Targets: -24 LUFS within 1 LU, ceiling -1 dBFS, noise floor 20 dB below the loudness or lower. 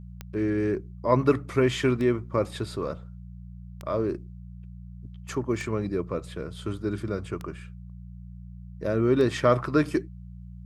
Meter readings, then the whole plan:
clicks 6; hum 60 Hz; harmonics up to 180 Hz; hum level -40 dBFS; loudness -27.0 LUFS; peak -7.0 dBFS; loudness target -24.0 LUFS
-> de-click; de-hum 60 Hz, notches 3; gain +3 dB

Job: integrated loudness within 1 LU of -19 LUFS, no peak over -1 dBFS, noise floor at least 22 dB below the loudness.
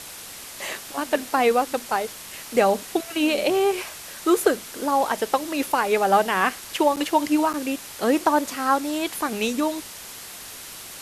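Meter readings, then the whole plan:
dropouts 2; longest dropout 8.2 ms; noise floor -39 dBFS; noise floor target -45 dBFS; loudness -23.0 LUFS; peak -5.5 dBFS; loudness target -19.0 LUFS
-> interpolate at 6.96/7.53, 8.2 ms; noise print and reduce 6 dB; gain +4 dB

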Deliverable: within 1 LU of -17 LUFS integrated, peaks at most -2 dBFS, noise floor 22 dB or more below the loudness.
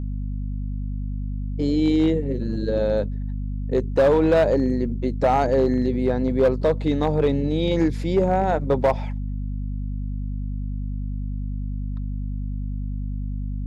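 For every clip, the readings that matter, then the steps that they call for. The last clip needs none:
clipped 0.9%; flat tops at -12.0 dBFS; hum 50 Hz; harmonics up to 250 Hz; hum level -25 dBFS; loudness -23.5 LUFS; peak -12.0 dBFS; loudness target -17.0 LUFS
-> clip repair -12 dBFS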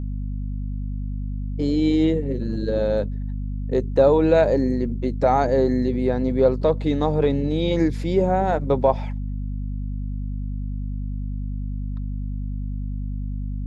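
clipped 0.0%; hum 50 Hz; harmonics up to 250 Hz; hum level -25 dBFS
-> de-hum 50 Hz, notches 5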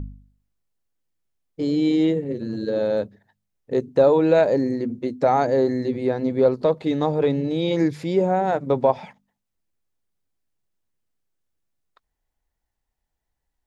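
hum none; loudness -21.5 LUFS; peak -5.0 dBFS; loudness target -17.0 LUFS
-> gain +4.5 dB; limiter -2 dBFS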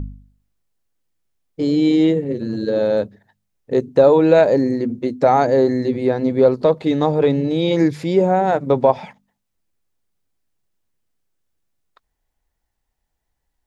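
loudness -17.0 LUFS; peak -2.0 dBFS; noise floor -76 dBFS

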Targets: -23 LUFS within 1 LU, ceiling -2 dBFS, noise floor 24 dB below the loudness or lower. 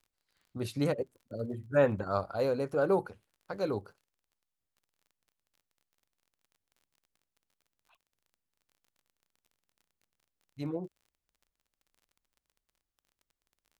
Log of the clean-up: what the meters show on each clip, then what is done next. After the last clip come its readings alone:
ticks 28/s; loudness -32.5 LUFS; peak -13.5 dBFS; loudness target -23.0 LUFS
-> de-click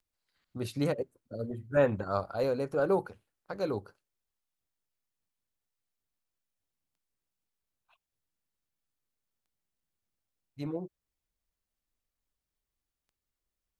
ticks 0.22/s; loudness -32.5 LUFS; peak -13.5 dBFS; loudness target -23.0 LUFS
-> gain +9.5 dB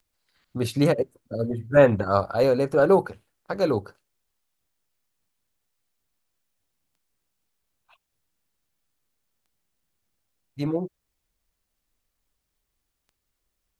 loudness -23.0 LUFS; peak -4.0 dBFS; noise floor -79 dBFS

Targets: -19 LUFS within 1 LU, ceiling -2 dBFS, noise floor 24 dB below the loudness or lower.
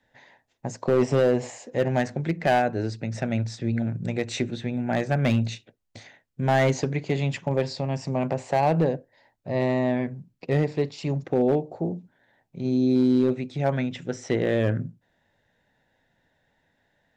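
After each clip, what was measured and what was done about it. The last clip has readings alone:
clipped 0.8%; flat tops at -14.0 dBFS; loudness -25.5 LUFS; peak -14.0 dBFS; loudness target -19.0 LUFS
-> clip repair -14 dBFS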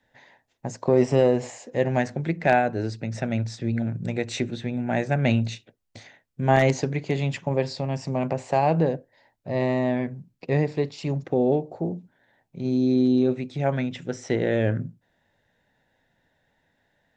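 clipped 0.0%; loudness -25.0 LUFS; peak -5.0 dBFS; loudness target -19.0 LUFS
-> gain +6 dB; limiter -2 dBFS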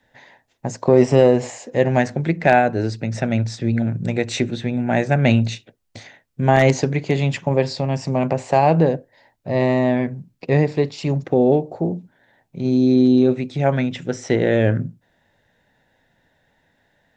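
loudness -19.0 LUFS; peak -2.0 dBFS; noise floor -65 dBFS

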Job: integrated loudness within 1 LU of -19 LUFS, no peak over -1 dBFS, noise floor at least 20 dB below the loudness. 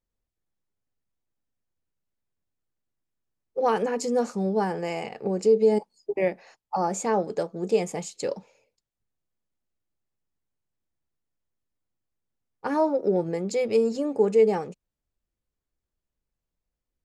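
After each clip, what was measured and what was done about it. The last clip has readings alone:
loudness -25.5 LUFS; peak -10.5 dBFS; loudness target -19.0 LUFS
-> gain +6.5 dB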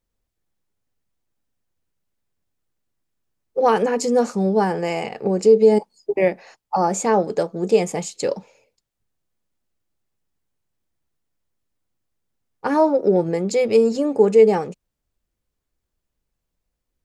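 loudness -19.0 LUFS; peak -4.0 dBFS; noise floor -80 dBFS

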